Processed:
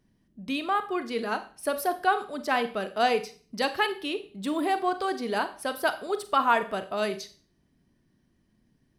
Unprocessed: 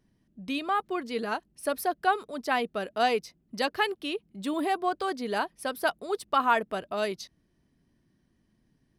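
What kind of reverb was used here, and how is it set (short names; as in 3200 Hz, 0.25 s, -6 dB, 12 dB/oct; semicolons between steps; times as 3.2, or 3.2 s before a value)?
Schroeder reverb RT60 0.41 s, combs from 30 ms, DRR 10 dB; gain +1 dB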